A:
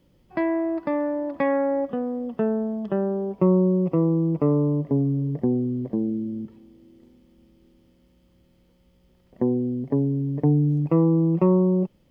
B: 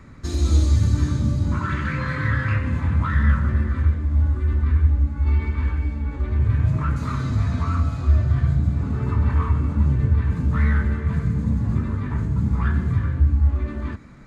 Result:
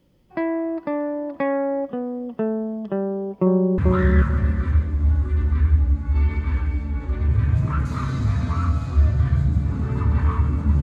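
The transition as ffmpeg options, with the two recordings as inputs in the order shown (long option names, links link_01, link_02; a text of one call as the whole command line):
ffmpeg -i cue0.wav -i cue1.wav -filter_complex "[0:a]apad=whole_dur=10.82,atrim=end=10.82,atrim=end=3.782[link_01];[1:a]atrim=start=2.888:end=9.93[link_02];[link_01][link_02]acrossfade=duration=0.004:curve1=hsin:curve2=hsin,asplit=2[link_03][link_04];[link_04]afade=type=in:start_time=3.02:duration=0.01,afade=type=out:start_time=3.78:duration=0.01,aecho=0:1:440|880|1320|1760:0.707946|0.176986|0.0442466|0.0110617[link_05];[link_03][link_05]amix=inputs=2:normalize=0" out.wav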